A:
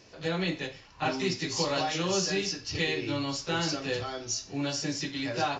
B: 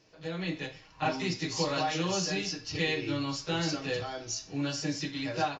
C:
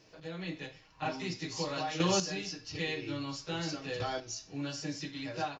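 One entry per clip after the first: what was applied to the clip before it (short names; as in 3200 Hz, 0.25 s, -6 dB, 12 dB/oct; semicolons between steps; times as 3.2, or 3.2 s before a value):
high shelf 7000 Hz -4.5 dB; comb 6.4 ms, depth 42%; AGC gain up to 7 dB; gain -9 dB
chopper 0.5 Hz, depth 60%, duty 10%; gain +2.5 dB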